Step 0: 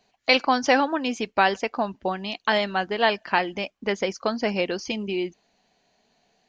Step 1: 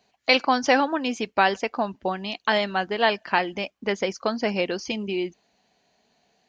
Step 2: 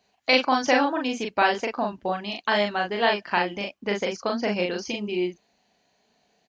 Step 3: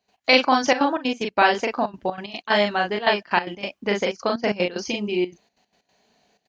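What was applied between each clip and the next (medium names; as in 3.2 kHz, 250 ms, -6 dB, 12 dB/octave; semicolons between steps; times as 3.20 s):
high-pass 43 Hz
doubling 39 ms -2.5 dB; trim -2.5 dB
trance gate ".x.xxxxxx.xx.x" 186 bpm -12 dB; trim +3.5 dB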